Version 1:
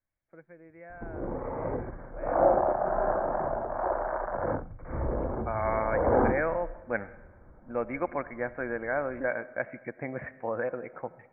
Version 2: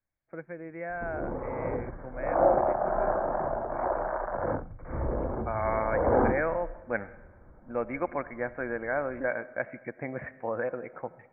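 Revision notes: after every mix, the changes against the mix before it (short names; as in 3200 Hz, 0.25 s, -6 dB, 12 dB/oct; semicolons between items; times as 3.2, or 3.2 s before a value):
first voice +11.0 dB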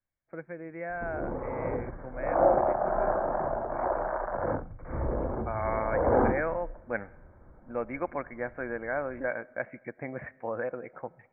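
second voice: send -8.0 dB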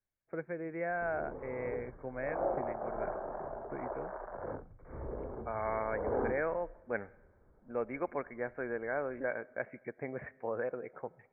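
second voice -4.5 dB; background -12.0 dB; master: add bell 420 Hz +10.5 dB 0.21 oct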